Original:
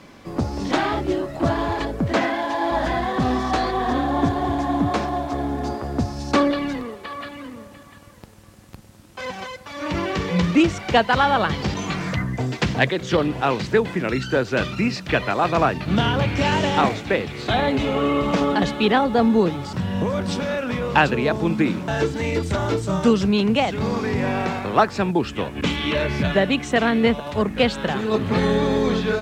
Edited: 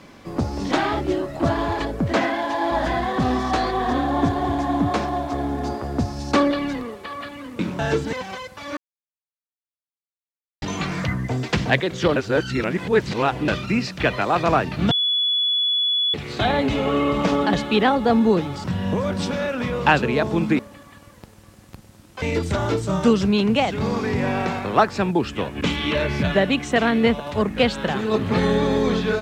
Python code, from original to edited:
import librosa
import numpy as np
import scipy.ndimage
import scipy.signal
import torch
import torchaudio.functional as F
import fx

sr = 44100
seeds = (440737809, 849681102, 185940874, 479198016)

y = fx.edit(x, sr, fx.swap(start_s=7.59, length_s=1.63, other_s=21.68, other_length_s=0.54),
    fx.silence(start_s=9.86, length_s=1.85),
    fx.reverse_span(start_s=13.25, length_s=1.32),
    fx.bleep(start_s=16.0, length_s=1.23, hz=3410.0, db=-17.5), tone=tone)